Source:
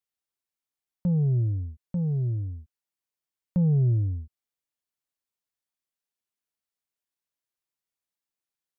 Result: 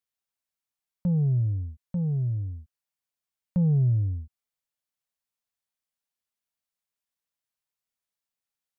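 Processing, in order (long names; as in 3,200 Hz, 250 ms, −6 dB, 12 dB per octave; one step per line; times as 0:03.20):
parametric band 350 Hz −14.5 dB 0.27 octaves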